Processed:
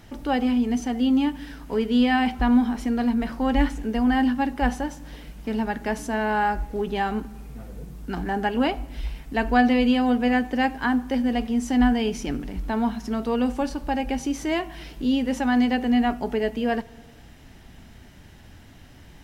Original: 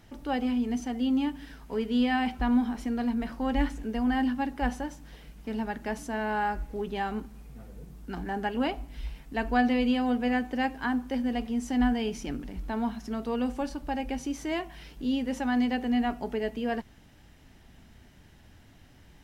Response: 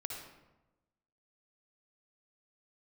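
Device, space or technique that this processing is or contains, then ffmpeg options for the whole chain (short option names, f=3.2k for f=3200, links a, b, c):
compressed reverb return: -filter_complex "[0:a]asplit=2[a][b];[1:a]atrim=start_sample=2205[c];[b][c]afir=irnorm=-1:irlink=0,acompressor=threshold=-38dB:ratio=6,volume=-10dB[d];[a][d]amix=inputs=2:normalize=0,volume=5.5dB"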